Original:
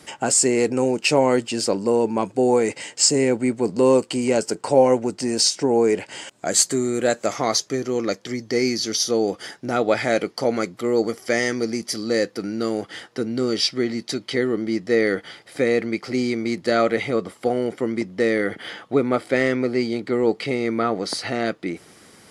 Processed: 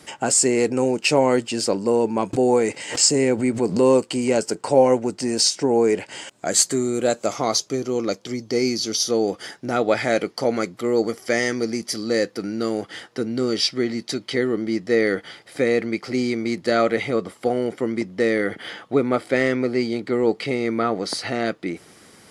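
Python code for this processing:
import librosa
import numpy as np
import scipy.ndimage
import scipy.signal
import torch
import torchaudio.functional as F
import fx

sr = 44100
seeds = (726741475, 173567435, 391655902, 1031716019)

y = fx.pre_swell(x, sr, db_per_s=120.0, at=(2.33, 3.94))
y = fx.peak_eq(y, sr, hz=1800.0, db=-8.5, octaves=0.4, at=(6.83, 9.05))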